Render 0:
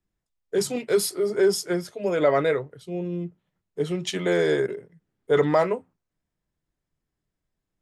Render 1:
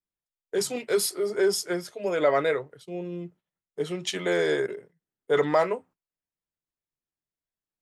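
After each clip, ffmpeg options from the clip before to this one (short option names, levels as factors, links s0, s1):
-af "agate=range=0.282:threshold=0.00447:ratio=16:detection=peak,lowshelf=f=270:g=-10"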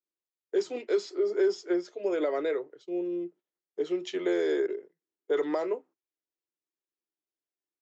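-filter_complex "[0:a]aresample=16000,aresample=44100,acrossover=split=690|3700[s0][s1][s2];[s0]acompressor=threshold=0.0501:ratio=4[s3];[s1]acompressor=threshold=0.0282:ratio=4[s4];[s2]acompressor=threshold=0.00891:ratio=4[s5];[s3][s4][s5]amix=inputs=3:normalize=0,highpass=f=340:t=q:w=4,volume=0.447"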